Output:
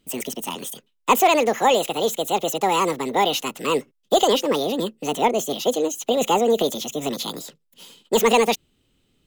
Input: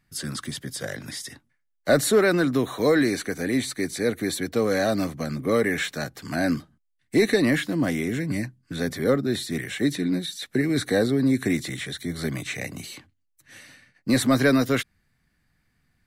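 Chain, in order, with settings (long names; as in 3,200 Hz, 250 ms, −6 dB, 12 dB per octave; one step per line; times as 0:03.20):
wrong playback speed 45 rpm record played at 78 rpm
level +3 dB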